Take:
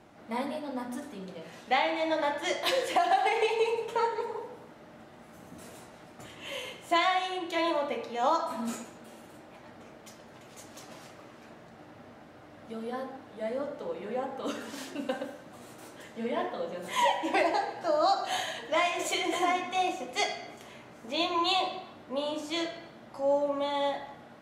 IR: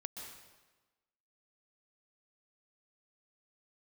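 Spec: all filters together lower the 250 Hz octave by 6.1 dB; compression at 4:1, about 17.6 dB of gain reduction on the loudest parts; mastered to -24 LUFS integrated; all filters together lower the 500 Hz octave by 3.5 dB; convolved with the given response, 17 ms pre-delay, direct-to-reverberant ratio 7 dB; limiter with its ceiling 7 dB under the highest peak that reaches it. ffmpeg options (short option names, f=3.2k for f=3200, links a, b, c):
-filter_complex "[0:a]equalizer=f=250:t=o:g=-7,equalizer=f=500:t=o:g=-3,acompressor=threshold=-45dB:ratio=4,alimiter=level_in=12.5dB:limit=-24dB:level=0:latency=1,volume=-12.5dB,asplit=2[a][b];[1:a]atrim=start_sample=2205,adelay=17[c];[b][c]afir=irnorm=-1:irlink=0,volume=-5dB[d];[a][d]amix=inputs=2:normalize=0,volume=23dB"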